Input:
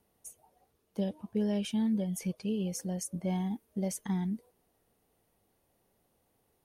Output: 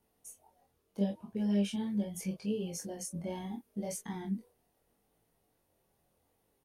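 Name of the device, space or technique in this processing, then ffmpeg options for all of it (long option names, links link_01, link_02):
double-tracked vocal: -filter_complex "[0:a]asplit=2[link_01][link_02];[link_02]adelay=25,volume=-4.5dB[link_03];[link_01][link_03]amix=inputs=2:normalize=0,flanger=delay=17.5:depth=6.4:speed=0.75"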